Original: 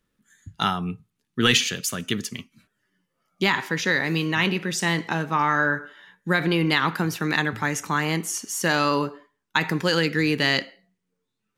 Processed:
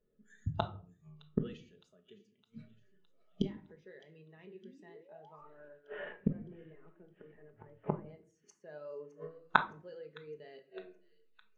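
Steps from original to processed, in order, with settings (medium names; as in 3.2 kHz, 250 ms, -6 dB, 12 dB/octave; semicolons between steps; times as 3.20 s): 5.38–8.06 s: CVSD coder 16 kbps; high-order bell 520 Hz +10.5 dB 1.2 oct; 4.63–5.46 s: painted sound rise 210–1300 Hz -24 dBFS; flange 0.39 Hz, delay 8.6 ms, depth 5 ms, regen +89%; inverted gate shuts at -27 dBFS, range -36 dB; distance through air 61 m; feedback echo behind a high-pass 612 ms, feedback 68%, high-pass 2.2 kHz, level -11 dB; simulated room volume 750 m³, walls furnished, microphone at 1.4 m; spectral contrast expander 1.5:1; trim +10.5 dB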